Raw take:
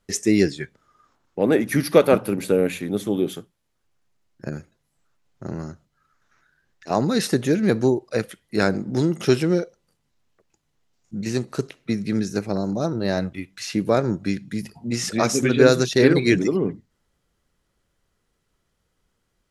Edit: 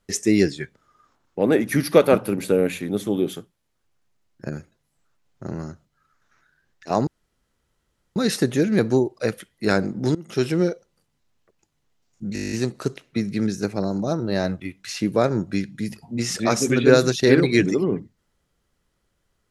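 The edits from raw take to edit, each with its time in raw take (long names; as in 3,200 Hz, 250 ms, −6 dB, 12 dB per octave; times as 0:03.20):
0:07.07: splice in room tone 1.09 s
0:09.06–0:09.50: fade in, from −20 dB
0:11.25: stutter 0.02 s, 10 plays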